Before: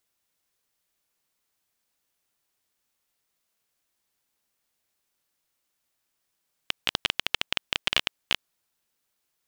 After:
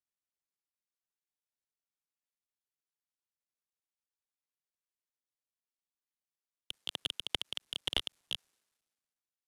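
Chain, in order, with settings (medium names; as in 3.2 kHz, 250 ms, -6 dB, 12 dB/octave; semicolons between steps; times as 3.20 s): CVSD coder 64 kbps; three bands expanded up and down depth 70%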